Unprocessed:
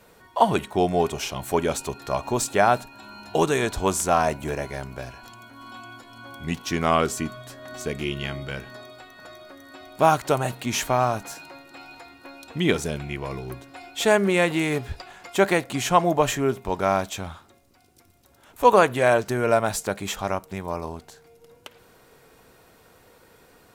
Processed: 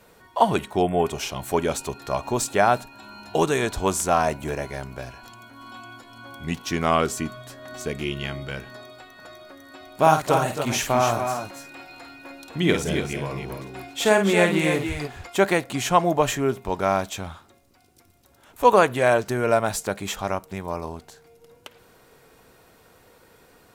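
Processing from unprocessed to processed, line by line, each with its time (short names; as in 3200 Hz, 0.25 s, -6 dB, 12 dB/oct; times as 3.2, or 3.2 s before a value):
0.82–1.06 spectral delete 3500–7400 Hz
9.94–15.27 tapped delay 51/269/290 ms -6.5/-10.5/-7.5 dB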